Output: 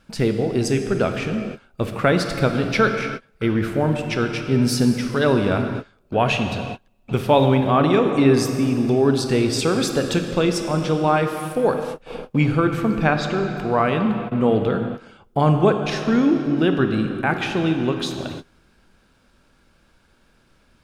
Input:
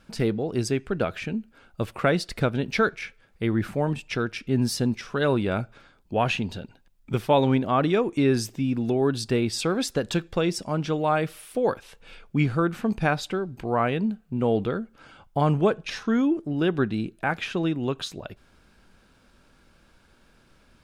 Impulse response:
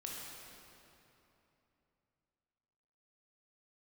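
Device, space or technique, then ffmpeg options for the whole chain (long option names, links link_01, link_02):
keyed gated reverb: -filter_complex "[0:a]asettb=1/sr,asplit=3[link_01][link_02][link_03];[link_01]atrim=end=12.874[link_04];[link_02]atrim=start=12.87:end=13.51,asetpts=PTS-STARTPTS,afade=type=in:duration=0.004:curve=qsin,afade=type=out:start_time=0.636:duration=0.004:curve=qsin,lowpass=5800[link_05];[link_03]atrim=start=13.506[link_06];[link_04][link_05]acrossfade=duration=0.004:curve1=hsin:curve2=qsin[link_07];[link_07][link_06]acrossfade=duration=0.004:curve1=qsin:curve2=hsin,asplit=3[link_08][link_09][link_10];[1:a]atrim=start_sample=2205[link_11];[link_09][link_11]afir=irnorm=-1:irlink=0[link_12];[link_10]apad=whole_len=918899[link_13];[link_12][link_13]sidechaingate=range=-33dB:threshold=-46dB:ratio=16:detection=peak,volume=1.5dB[link_14];[link_08][link_14]amix=inputs=2:normalize=0"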